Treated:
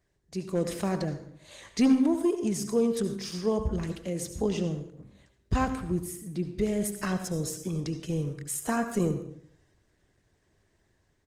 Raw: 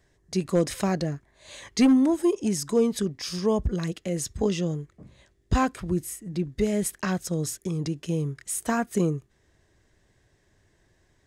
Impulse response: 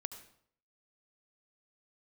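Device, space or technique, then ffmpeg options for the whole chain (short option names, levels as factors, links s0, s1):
speakerphone in a meeting room: -filter_complex "[0:a]asplit=3[s0][s1][s2];[s0]afade=t=out:st=3.19:d=0.02[s3];[s1]bandreject=f=50:t=h:w=6,bandreject=f=100:t=h:w=6,bandreject=f=150:t=h:w=6,bandreject=f=200:t=h:w=6,bandreject=f=250:t=h:w=6,afade=t=in:st=3.19:d=0.02,afade=t=out:st=4.3:d=0.02[s4];[s2]afade=t=in:st=4.3:d=0.02[s5];[s3][s4][s5]amix=inputs=3:normalize=0[s6];[1:a]atrim=start_sample=2205[s7];[s6][s7]afir=irnorm=-1:irlink=0,asplit=2[s8][s9];[s9]adelay=190,highpass=300,lowpass=3400,asoftclip=type=hard:threshold=0.0841,volume=0.0398[s10];[s8][s10]amix=inputs=2:normalize=0,dynaudnorm=f=240:g=5:m=1.88,volume=0.501" -ar 48000 -c:a libopus -b:a 20k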